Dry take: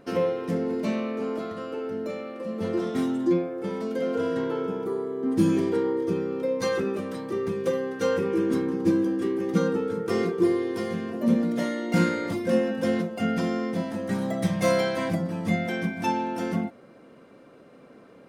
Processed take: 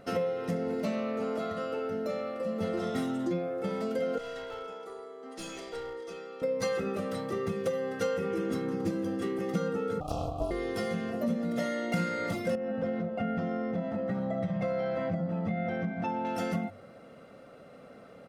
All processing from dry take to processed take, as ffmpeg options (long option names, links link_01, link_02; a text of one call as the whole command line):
ffmpeg -i in.wav -filter_complex "[0:a]asettb=1/sr,asplit=3[link_01][link_02][link_03];[link_01]atrim=end=4.184[link_04];[link_02]atrim=start=4.18:end=6.42,asetpts=PTS-STARTPTS,afade=type=in:duration=0.004:curve=qsin,afade=type=out:start_time=2.236:duration=0.004:curve=qsin,highpass=790,lowpass=7800,aeval=exprs='clip(val(0),-1,0.0224)':channel_layout=same,equalizer=frequency=1400:width_type=o:width=2.1:gain=-6.5[link_05];[link_03]atrim=start=6.416[link_06];[link_04][link_05]acrossfade=duration=0.004:curve1=hsin:curve2=qsin[link_07];[link_07][link_06]acrossfade=duration=0.004:curve1=qsin:curve2=hsin,asettb=1/sr,asplit=3[link_08][link_09][link_10];[link_08]atrim=end=10.004[link_11];[link_09]atrim=start=10:end=10.51,asetpts=PTS-STARTPTS,afade=type=in:duration=0.004:curve=qsin,afade=type=out:start_time=0.506:duration=0.004:curve=qsin,aeval=exprs='max(val(0),0)':channel_layout=same,asuperstop=centerf=1700:order=20:qfactor=1,aeval=exprs='val(0)*sin(2*PI*300*n/s)':channel_layout=same[link_12];[link_10]atrim=start=10.506[link_13];[link_11][link_12]acrossfade=duration=0.004:curve1=hsin:curve2=qsin[link_14];[link_14][link_13]acrossfade=duration=0.004:curve1=qsin:curve2=hsin,asettb=1/sr,asplit=3[link_15][link_16][link_17];[link_15]atrim=end=12.554[link_18];[link_16]atrim=start=12.55:end=16.25,asetpts=PTS-STARTPTS,afade=type=in:duration=0.004:curve=qsin,afade=type=out:start_time=3.696:duration=0.004:curve=qsin,lowpass=frequency=1400:poles=1,aemphasis=mode=reproduction:type=50fm,acompressor=threshold=-26dB:ratio=2.5:attack=3.2:release=140:knee=1:detection=peak[link_19];[link_17]atrim=start=16.246[link_20];[link_18][link_19]acrossfade=duration=0.004:curve1=hsin:curve2=qsin[link_21];[link_21][link_20]acrossfade=duration=0.004:curve1=qsin:curve2=hsin,aecho=1:1:1.5:0.54,bandreject=frequency=49.2:width_type=h:width=4,bandreject=frequency=98.4:width_type=h:width=4,bandreject=frequency=147.6:width_type=h:width=4,acompressor=threshold=-28dB:ratio=4" out.wav